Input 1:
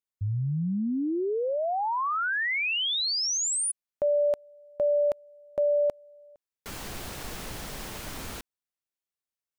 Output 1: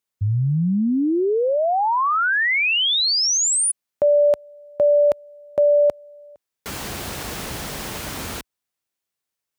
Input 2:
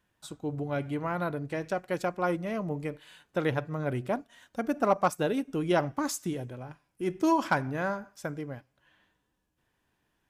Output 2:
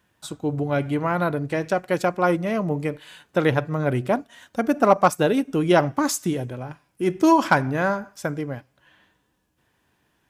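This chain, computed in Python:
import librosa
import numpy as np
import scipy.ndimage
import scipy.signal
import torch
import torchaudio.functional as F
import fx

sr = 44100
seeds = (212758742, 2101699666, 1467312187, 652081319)

y = scipy.signal.sosfilt(scipy.signal.butter(2, 52.0, 'highpass', fs=sr, output='sos'), x)
y = F.gain(torch.from_numpy(y), 8.5).numpy()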